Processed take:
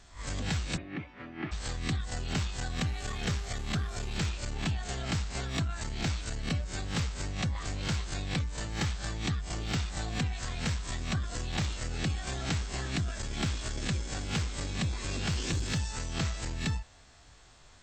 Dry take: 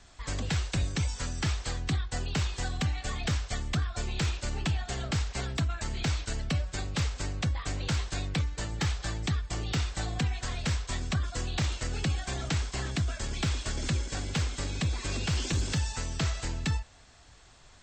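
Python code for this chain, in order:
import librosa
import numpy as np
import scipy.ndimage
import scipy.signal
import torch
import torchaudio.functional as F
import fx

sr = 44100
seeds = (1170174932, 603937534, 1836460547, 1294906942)

y = fx.spec_swells(x, sr, rise_s=0.32)
y = fx.cabinet(y, sr, low_hz=230.0, low_slope=12, high_hz=2200.0, hz=(320.0, 490.0, 930.0, 1500.0), db=(7, -9, -8, -7), at=(0.76, 1.51), fade=0.02)
y = fx.dmg_buzz(y, sr, base_hz=400.0, harmonics=31, level_db=-49.0, tilt_db=-6, odd_only=False, at=(2.85, 4.2), fade=0.02)
y = fx.transformer_sat(y, sr, knee_hz=140.0)
y = F.gain(torch.from_numpy(y), -2.0).numpy()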